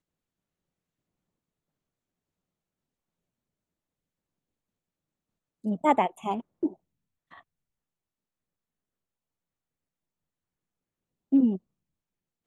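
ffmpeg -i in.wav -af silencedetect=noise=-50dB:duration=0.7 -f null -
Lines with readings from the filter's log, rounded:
silence_start: 0.00
silence_end: 5.64 | silence_duration: 5.64
silence_start: 7.41
silence_end: 11.32 | silence_duration: 3.91
silence_start: 11.58
silence_end: 12.46 | silence_duration: 0.88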